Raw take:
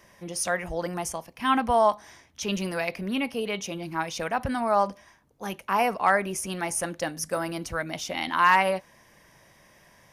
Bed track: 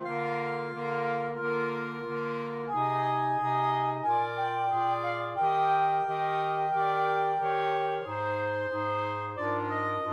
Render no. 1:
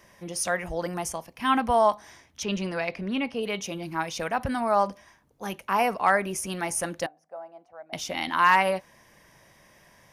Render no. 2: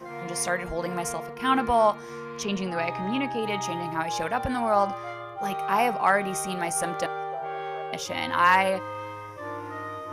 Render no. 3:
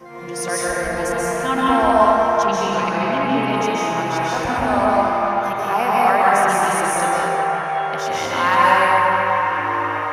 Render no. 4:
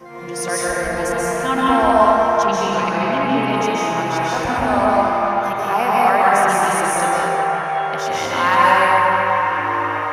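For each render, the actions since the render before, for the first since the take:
2.43–3.43 s: distance through air 77 m; 7.06–7.93 s: band-pass filter 730 Hz, Q 8.6
add bed track -5 dB
on a send: feedback echo behind a band-pass 378 ms, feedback 74%, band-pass 1.4 kHz, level -5.5 dB; on the sum: plate-style reverb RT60 2.4 s, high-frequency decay 0.55×, pre-delay 120 ms, DRR -6 dB
trim +1 dB; peak limiter -2 dBFS, peak gain reduction 1 dB

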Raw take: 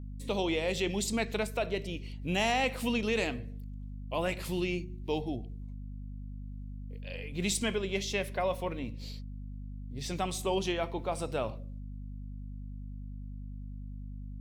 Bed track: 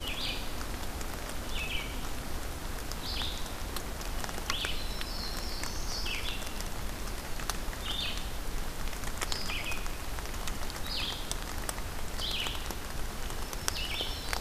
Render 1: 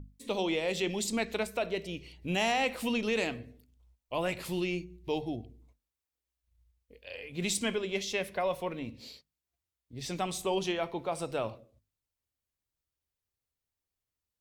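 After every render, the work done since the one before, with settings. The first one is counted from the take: hum notches 50/100/150/200/250 Hz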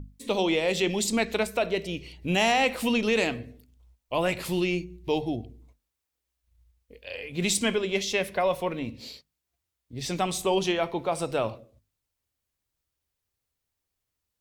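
trim +6 dB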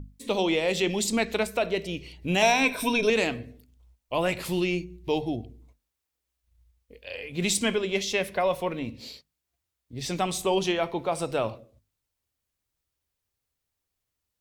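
2.42–3.10 s: rippled EQ curve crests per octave 1.6, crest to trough 15 dB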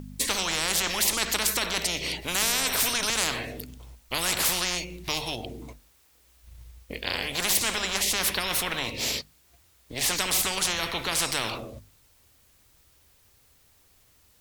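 spectrum-flattening compressor 10:1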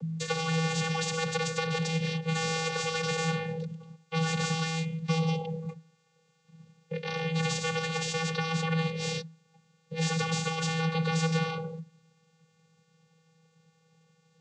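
vocoder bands 16, square 162 Hz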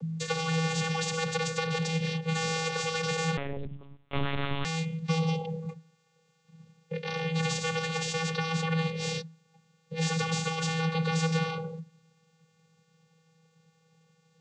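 3.37–4.65 s: monotone LPC vocoder at 8 kHz 140 Hz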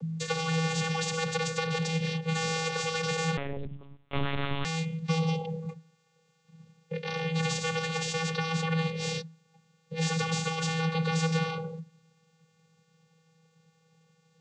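no audible change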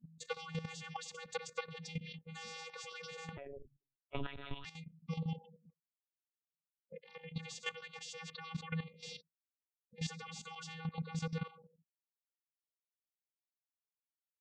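expander on every frequency bin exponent 3; level held to a coarse grid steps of 12 dB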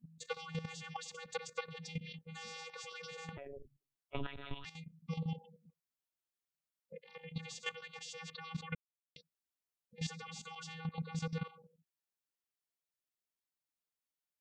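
8.75–9.16 s: mute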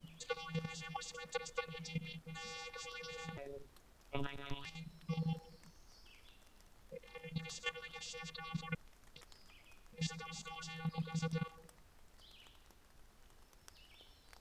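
add bed track -27.5 dB

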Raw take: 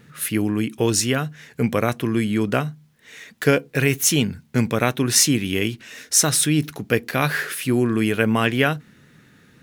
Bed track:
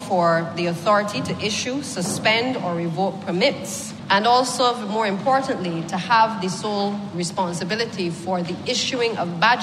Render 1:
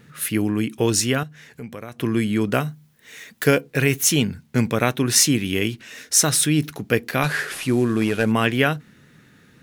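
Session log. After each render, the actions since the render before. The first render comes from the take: 1.23–1.99 s: compression 2:1, threshold -42 dBFS; 2.53–3.61 s: treble shelf 10 kHz +9.5 dB; 7.23–8.32 s: CVSD coder 64 kbps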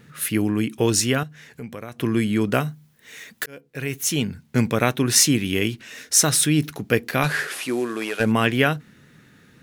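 3.46–4.58 s: fade in; 7.47–8.19 s: high-pass 260 Hz -> 560 Hz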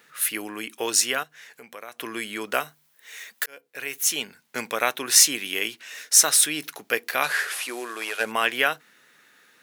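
high-pass 660 Hz 12 dB/octave; treble shelf 11 kHz +5 dB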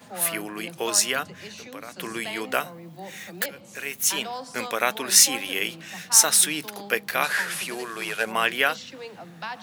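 add bed track -18 dB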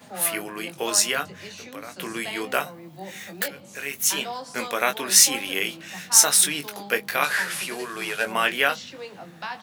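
doubling 21 ms -7 dB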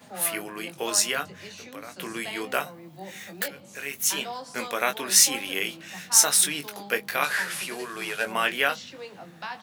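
trim -2.5 dB

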